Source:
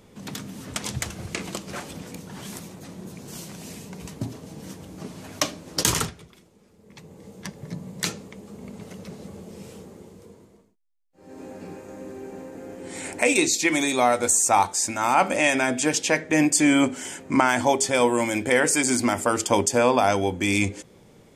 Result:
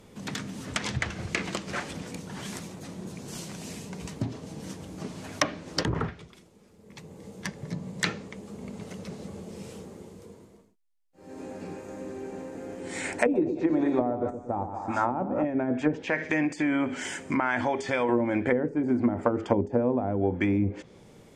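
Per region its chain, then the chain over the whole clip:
13.16–15.45 bell 2200 Hz -9.5 dB 0.47 oct + split-band echo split 1200 Hz, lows 0.116 s, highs 0.194 s, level -8 dB
16–18.09 thin delay 63 ms, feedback 67%, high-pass 2200 Hz, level -21.5 dB + compressor 2.5:1, threshold -25 dBFS
whole clip: treble ducked by the level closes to 360 Hz, closed at -17 dBFS; dynamic EQ 1800 Hz, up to +6 dB, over -49 dBFS, Q 1.7

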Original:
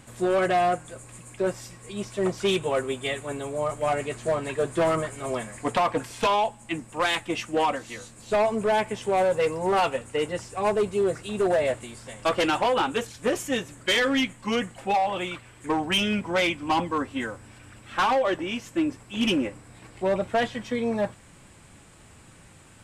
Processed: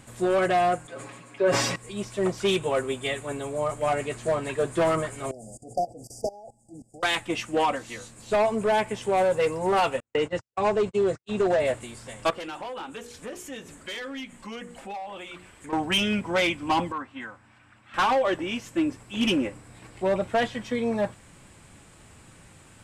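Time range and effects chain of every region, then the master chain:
0.87–1.76 three-band isolator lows -21 dB, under 180 Hz, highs -16 dB, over 4800 Hz + comb 7.2 ms, depth 86% + sustainer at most 39 dB/s
5.31–7.03 level quantiser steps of 21 dB + brick-wall FIR band-stop 840–4600 Hz
10–11.6 LPF 7200 Hz 24 dB/oct + gate -34 dBFS, range -57 dB + three-band squash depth 40%
12.3–15.73 notches 60/120/180/240/300/360/420/480 Hz + compressor 2.5:1, threshold -40 dBFS
16.92–17.94 band-pass 710 Hz, Q 0.54 + bell 450 Hz -14 dB 1.2 oct
whole clip: dry

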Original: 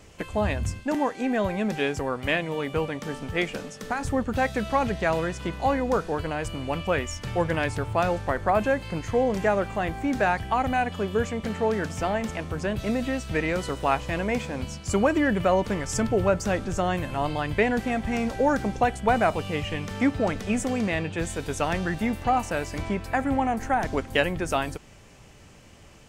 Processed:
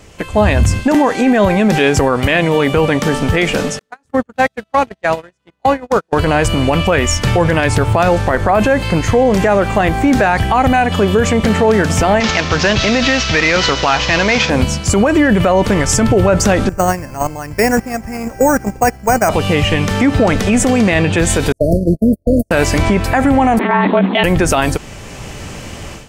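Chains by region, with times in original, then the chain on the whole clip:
3.79–6.13 gate -23 dBFS, range -50 dB + HPF 150 Hz 6 dB/oct
12.2–14.5 CVSD 32 kbps + tilt shelf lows -6.5 dB, about 920 Hz
16.69–19.29 steep low-pass 2600 Hz + gate -24 dBFS, range -16 dB + careless resampling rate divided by 6×, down none, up hold
21.52–22.51 gate -27 dBFS, range -48 dB + brick-wall FIR band-stop 680–4200 Hz + band shelf 3200 Hz -15.5 dB 2.9 oct
23.59–24.24 monotone LPC vocoder at 8 kHz 230 Hz + frequency shift +190 Hz + compressor, threshold -24 dBFS
whole clip: AGC gain up to 13.5 dB; maximiser +11.5 dB; gain -2.5 dB

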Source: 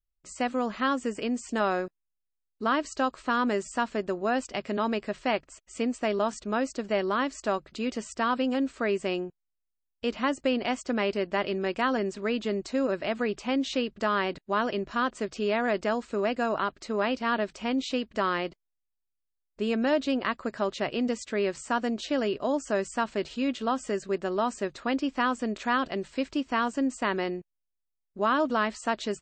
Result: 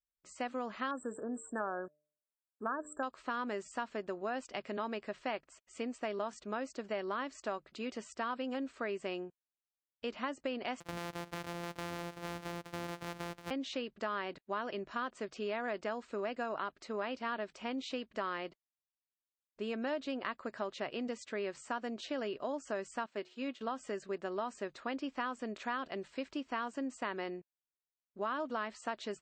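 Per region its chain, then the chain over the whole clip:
0.91–3.03 brick-wall FIR band-stop 1800–7300 Hz + high shelf 4300 Hz +8.5 dB + de-hum 149.9 Hz, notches 4
10.8–13.51 sample sorter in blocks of 256 samples + compressor 3:1, threshold -29 dBFS
23.06–23.61 HPF 180 Hz + de-hum 363.5 Hz, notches 14 + upward expander, over -47 dBFS
whole clip: HPF 1200 Hz 6 dB/oct; tilt -3 dB/oct; compressor 3:1, threshold -32 dBFS; gain -2 dB

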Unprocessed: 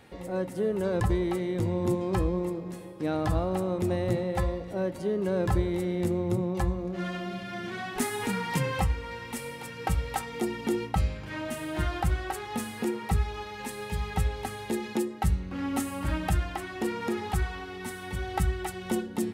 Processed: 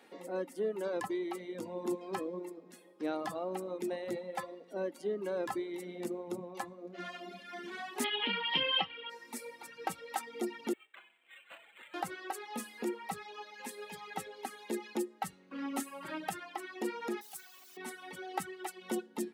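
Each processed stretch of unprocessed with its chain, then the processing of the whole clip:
8.04–9.1 synth low-pass 3100 Hz, resonance Q 15 + careless resampling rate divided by 4×, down none, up filtered
10.73–11.94 steep high-pass 2100 Hz + decimation joined by straight lines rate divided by 8×
17.21–17.77 pre-emphasis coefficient 0.8 + requantised 8-bit, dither triangular
whole clip: HPF 240 Hz 24 dB/oct; reverb removal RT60 1.9 s; gain -4.5 dB

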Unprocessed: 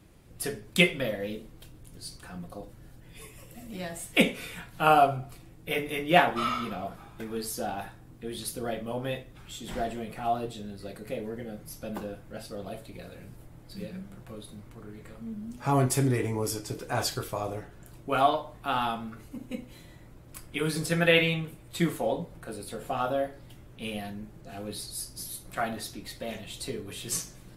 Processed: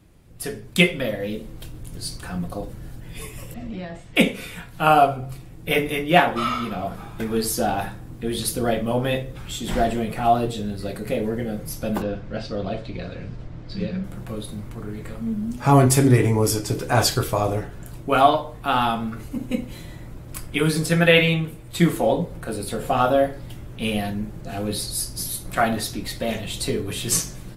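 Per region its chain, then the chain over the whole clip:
3.54–4.16 compressor, threshold -39 dBFS + air absorption 180 m
12.02–14.04 LPF 5500 Hz 24 dB/oct + notch 830 Hz, Q 16
whole clip: low shelf 220 Hz +4.5 dB; de-hum 66.26 Hz, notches 8; AGC gain up to 10 dB

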